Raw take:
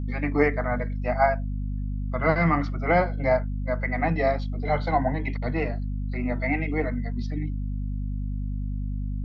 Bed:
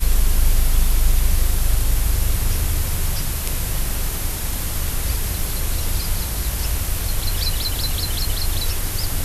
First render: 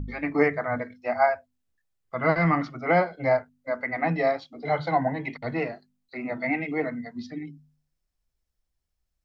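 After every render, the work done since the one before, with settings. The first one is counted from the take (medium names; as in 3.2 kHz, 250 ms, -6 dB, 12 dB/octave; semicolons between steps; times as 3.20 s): de-hum 50 Hz, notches 5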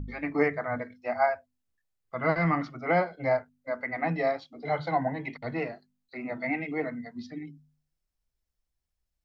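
trim -3.5 dB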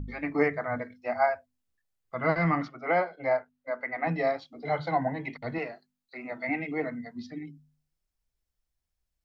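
2.68–4.07 s: tone controls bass -11 dB, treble -7 dB; 5.58–6.49 s: bass shelf 280 Hz -10 dB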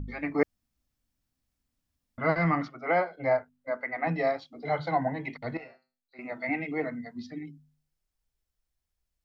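0.43–2.18 s: room tone; 3.15–3.77 s: bass shelf 200 Hz +10 dB; 5.57–6.19 s: feedback comb 130 Hz, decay 0.33 s, mix 90%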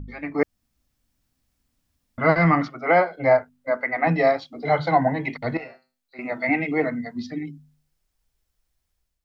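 level rider gain up to 8.5 dB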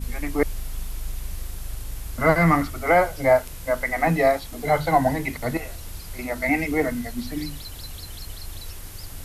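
add bed -14.5 dB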